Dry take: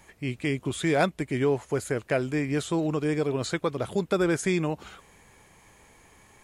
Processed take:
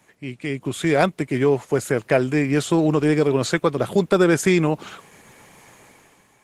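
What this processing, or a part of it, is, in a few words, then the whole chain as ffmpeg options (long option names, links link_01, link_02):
video call: -af "highpass=frequency=110:width=0.5412,highpass=frequency=110:width=1.3066,dynaudnorm=framelen=110:gausssize=11:maxgain=11dB,volume=-1dB" -ar 48000 -c:a libopus -b:a 16k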